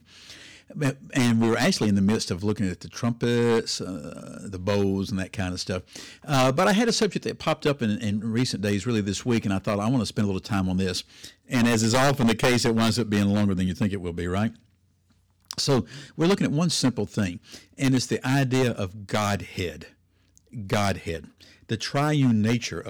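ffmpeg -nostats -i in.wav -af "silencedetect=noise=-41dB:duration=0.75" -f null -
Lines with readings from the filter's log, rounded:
silence_start: 14.56
silence_end: 15.45 | silence_duration: 0.89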